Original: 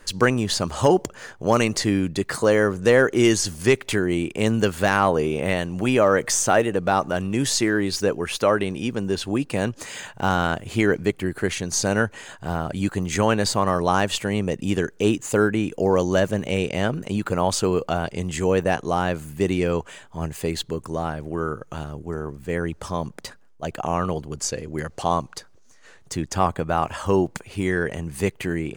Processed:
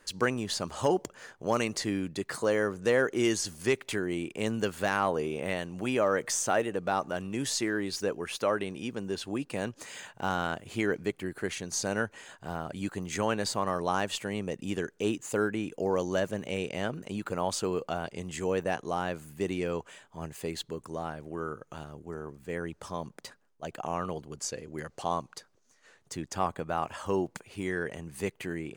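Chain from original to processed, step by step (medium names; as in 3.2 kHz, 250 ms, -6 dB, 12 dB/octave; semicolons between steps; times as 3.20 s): bass shelf 93 Hz -11.5 dB; trim -8.5 dB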